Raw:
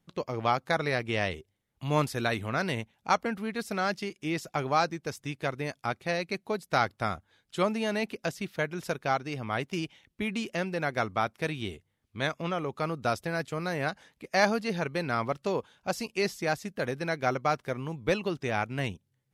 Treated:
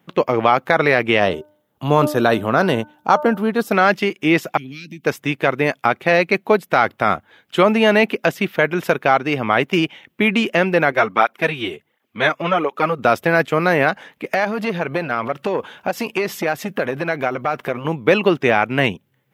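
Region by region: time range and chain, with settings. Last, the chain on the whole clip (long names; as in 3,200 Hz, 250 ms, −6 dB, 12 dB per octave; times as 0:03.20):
0:01.20–0:03.72: parametric band 2,200 Hz −13 dB 0.74 octaves + hum removal 300.1 Hz, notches 5
0:04.57–0:05.04: Chebyshev band-stop filter 270–2,600 Hz, order 3 + downward compressor 10 to 1, threshold −43 dBFS
0:10.92–0:12.99: low-shelf EQ 120 Hz −11.5 dB + through-zero flanger with one copy inverted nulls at 1.4 Hz, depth 5.2 ms
0:14.26–0:17.85: transient designer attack +9 dB, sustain +5 dB + downward compressor 5 to 1, threshold −32 dBFS + saturating transformer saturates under 680 Hz
whole clip: Bessel high-pass filter 230 Hz, order 2; flat-topped bell 6,600 Hz −11.5 dB; boost into a limiter +18.5 dB; level −1 dB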